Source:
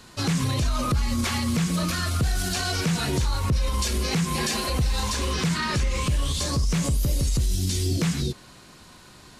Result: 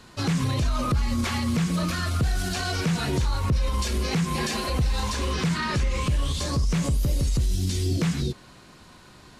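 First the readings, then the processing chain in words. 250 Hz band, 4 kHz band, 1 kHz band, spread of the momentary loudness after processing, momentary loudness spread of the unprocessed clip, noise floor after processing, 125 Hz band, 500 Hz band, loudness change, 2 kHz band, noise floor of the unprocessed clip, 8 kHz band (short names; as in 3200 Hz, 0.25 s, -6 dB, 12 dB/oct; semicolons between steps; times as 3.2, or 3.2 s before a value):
0.0 dB, -3.0 dB, -0.5 dB, 2 LU, 1 LU, -50 dBFS, 0.0 dB, 0.0 dB, -0.5 dB, -1.0 dB, -49 dBFS, -5.0 dB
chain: high shelf 4500 Hz -6.5 dB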